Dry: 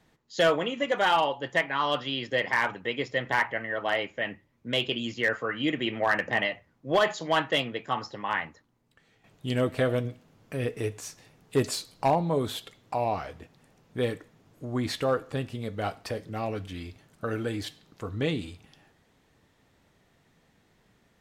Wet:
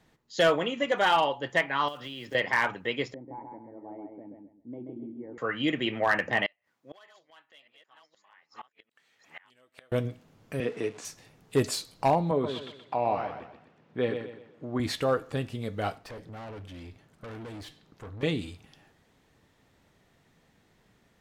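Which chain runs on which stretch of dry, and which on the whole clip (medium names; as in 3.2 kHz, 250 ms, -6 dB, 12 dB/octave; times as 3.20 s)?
1.88–2.35 s: block-companded coder 5-bit + treble shelf 7.5 kHz -7.5 dB + compression 12:1, threshold -35 dBFS
3.14–5.38 s: cascade formant filter u + feedback delay 133 ms, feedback 27%, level -4 dB
6.46–9.92 s: chunks repeated in reverse 609 ms, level -3 dB + high-pass 1.4 kHz 6 dB/octave + inverted gate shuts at -31 dBFS, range -28 dB
10.60–11.05 s: jump at every zero crossing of -44 dBFS + high-pass 160 Hz 24 dB/octave + distance through air 83 m
12.31–14.80 s: band-pass 150–3000 Hz + feedback delay 125 ms, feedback 36%, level -7.5 dB
15.98–18.23 s: valve stage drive 39 dB, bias 0.35 + treble shelf 4.1 kHz -6.5 dB
whole clip: none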